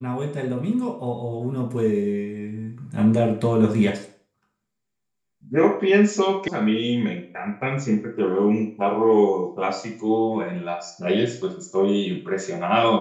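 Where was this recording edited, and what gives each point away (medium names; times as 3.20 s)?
6.48 s: sound stops dead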